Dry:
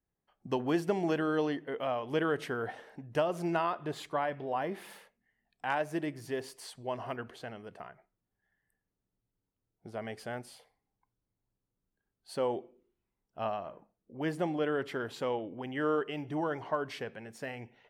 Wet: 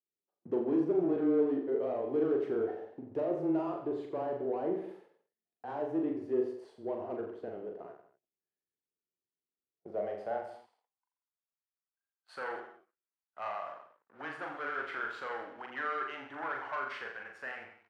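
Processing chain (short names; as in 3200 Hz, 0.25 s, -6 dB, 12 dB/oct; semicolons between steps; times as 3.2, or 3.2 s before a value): sample leveller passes 3; frequency shift -14 Hz; band-pass sweep 390 Hz -> 1400 Hz, 9.61–11.09; vibrato 6.4 Hz 13 cents; reverse bouncing-ball echo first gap 40 ms, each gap 1.1×, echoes 5; gain -4 dB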